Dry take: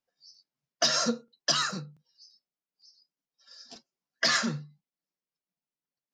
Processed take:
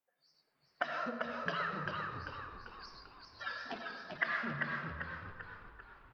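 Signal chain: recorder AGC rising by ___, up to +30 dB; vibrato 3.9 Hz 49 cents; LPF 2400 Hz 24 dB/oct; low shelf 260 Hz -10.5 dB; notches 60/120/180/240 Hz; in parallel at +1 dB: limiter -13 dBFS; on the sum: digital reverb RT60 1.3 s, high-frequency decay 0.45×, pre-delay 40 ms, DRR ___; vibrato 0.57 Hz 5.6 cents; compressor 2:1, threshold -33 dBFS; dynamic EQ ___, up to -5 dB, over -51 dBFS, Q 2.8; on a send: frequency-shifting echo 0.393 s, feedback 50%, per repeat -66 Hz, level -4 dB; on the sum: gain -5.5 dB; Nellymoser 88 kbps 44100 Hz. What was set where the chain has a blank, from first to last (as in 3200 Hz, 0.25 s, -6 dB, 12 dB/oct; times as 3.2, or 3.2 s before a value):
27 dB/s, 8.5 dB, 530 Hz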